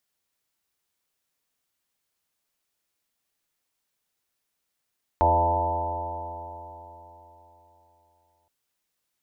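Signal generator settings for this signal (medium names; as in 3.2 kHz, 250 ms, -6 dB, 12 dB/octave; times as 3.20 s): stretched partials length 3.27 s, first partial 82.6 Hz, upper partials -19.5/-14/-8.5/-11.5/-6.5/-1/-0.5/-6/5.5/-6 dB, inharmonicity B 0.0014, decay 3.75 s, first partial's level -24 dB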